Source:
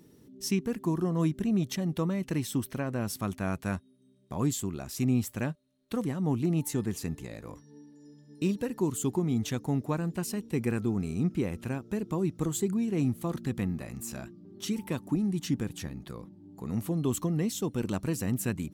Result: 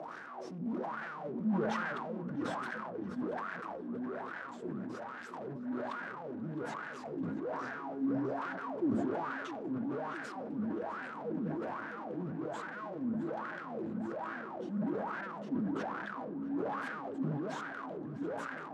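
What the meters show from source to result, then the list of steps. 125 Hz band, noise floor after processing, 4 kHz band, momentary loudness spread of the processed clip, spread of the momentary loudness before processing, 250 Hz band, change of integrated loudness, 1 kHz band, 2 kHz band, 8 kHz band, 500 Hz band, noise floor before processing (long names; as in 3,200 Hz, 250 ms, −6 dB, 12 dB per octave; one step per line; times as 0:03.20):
−14.5 dB, −45 dBFS, −12.0 dB, 8 LU, 11 LU, −7.0 dB, −7.0 dB, +3.5 dB, +2.5 dB, below −20 dB, −4.5 dB, −60 dBFS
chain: frequency shifter −16 Hz
low-shelf EQ 240 Hz +8 dB
power curve on the samples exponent 0.35
mains-hum notches 60/120/180/240 Hz
tube saturation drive 30 dB, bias 0.3
LFO wah 1.2 Hz 220–1,600 Hz, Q 8.6
band-pass filter 140–7,500 Hz
tape delay 659 ms, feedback 54%, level −11 dB, low-pass 4,800 Hz
rectangular room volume 3,400 cubic metres, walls furnished, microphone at 0.61 metres
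level that may fall only so fast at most 21 dB per second
level +5 dB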